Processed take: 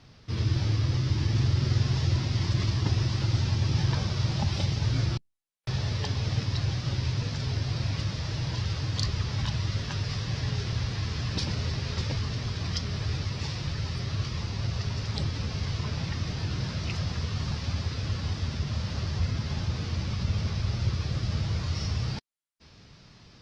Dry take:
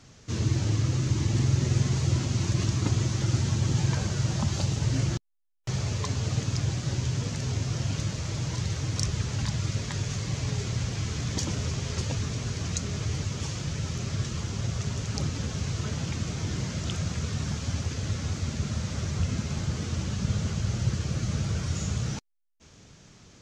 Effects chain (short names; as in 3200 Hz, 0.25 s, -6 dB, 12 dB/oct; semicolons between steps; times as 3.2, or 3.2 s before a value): formant shift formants -4 st; Opus 32 kbps 48000 Hz